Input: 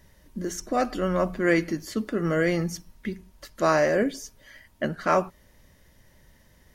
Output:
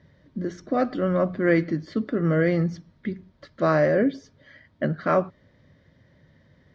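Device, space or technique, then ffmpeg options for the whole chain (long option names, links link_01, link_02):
guitar cabinet: -af "highpass=86,equalizer=frequency=100:width_type=q:width=4:gain=8,equalizer=frequency=150:width_type=q:width=4:gain=8,equalizer=frequency=270:width_type=q:width=4:gain=5,equalizer=frequency=540:width_type=q:width=4:gain=3,equalizer=frequency=890:width_type=q:width=4:gain=-6,equalizer=frequency=2700:width_type=q:width=4:gain=-9,lowpass=frequency=4000:width=0.5412,lowpass=frequency=4000:width=1.3066"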